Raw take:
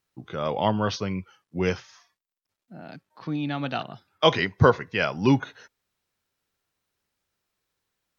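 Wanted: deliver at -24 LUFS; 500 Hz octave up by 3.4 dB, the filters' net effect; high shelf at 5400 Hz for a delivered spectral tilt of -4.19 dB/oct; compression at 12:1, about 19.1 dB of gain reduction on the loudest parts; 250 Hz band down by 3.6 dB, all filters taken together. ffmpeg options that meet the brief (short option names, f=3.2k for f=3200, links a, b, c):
-af "equalizer=f=250:t=o:g=-6.5,equalizer=f=500:t=o:g=5.5,highshelf=f=5.4k:g=6,acompressor=threshold=-29dB:ratio=12,volume=12dB"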